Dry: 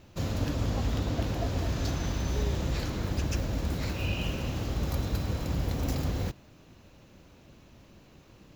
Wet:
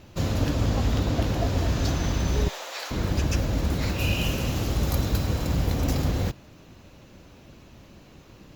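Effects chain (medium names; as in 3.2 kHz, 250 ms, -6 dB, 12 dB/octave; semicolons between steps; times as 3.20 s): 2.48–2.91 s: high-pass 620 Hz 24 dB/octave; 3.98–5.82 s: peaking EQ 12 kHz +10 dB -> +1 dB 1.7 oct; trim +5.5 dB; Opus 48 kbps 48 kHz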